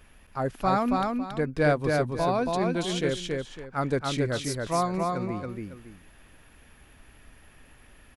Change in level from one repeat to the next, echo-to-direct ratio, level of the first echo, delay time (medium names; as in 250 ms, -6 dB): -11.0 dB, -2.5 dB, -3.0 dB, 277 ms